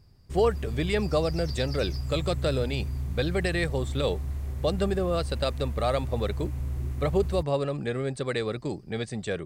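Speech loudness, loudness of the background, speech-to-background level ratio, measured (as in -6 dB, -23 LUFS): -29.5 LUFS, -34.0 LUFS, 4.5 dB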